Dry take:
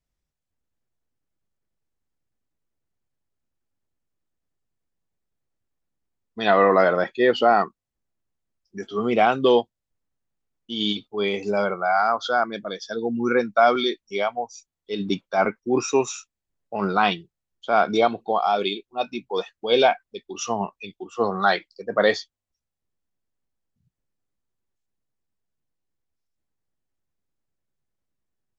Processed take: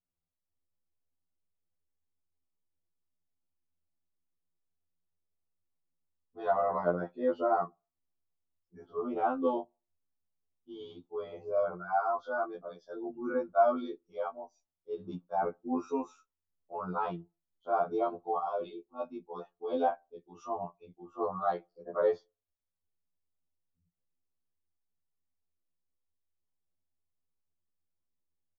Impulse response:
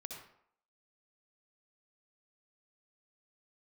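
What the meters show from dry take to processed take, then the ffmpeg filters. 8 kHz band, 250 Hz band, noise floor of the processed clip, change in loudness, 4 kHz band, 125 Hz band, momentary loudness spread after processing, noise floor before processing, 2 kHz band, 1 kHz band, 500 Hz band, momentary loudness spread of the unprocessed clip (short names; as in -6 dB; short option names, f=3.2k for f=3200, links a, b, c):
n/a, -11.5 dB, under -85 dBFS, -11.0 dB, under -25 dB, -12.5 dB, 16 LU, -85 dBFS, -19.0 dB, -10.5 dB, -10.5 dB, 14 LU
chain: -filter_complex "[0:a]firequalizer=gain_entry='entry(1200,0);entry(1900,-19);entry(7500,-23)':delay=0.05:min_phase=1,asplit=2[a][b];[1:a]atrim=start_sample=2205,asetrate=79380,aresample=44100,lowpass=1k[c];[b][c]afir=irnorm=-1:irlink=0,volume=-17.5dB[d];[a][d]amix=inputs=2:normalize=0,afftfilt=real='re*2*eq(mod(b,4),0)':imag='im*2*eq(mod(b,4),0)':win_size=2048:overlap=0.75,volume=-7.5dB"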